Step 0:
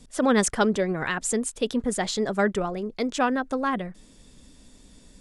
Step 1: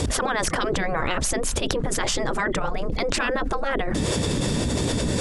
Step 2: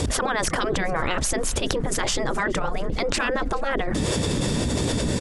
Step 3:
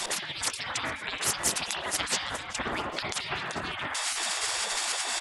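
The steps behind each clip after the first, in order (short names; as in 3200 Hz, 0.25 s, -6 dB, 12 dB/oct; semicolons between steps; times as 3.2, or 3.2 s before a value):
spectral gate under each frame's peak -10 dB weak; tilt -2.5 dB/oct; fast leveller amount 100%; gain +2 dB
feedback echo 0.424 s, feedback 58%, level -24 dB
spring tank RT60 1 s, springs 38/56 ms, chirp 30 ms, DRR 6 dB; spectral gate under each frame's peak -20 dB weak; Doppler distortion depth 0.15 ms; gain +3.5 dB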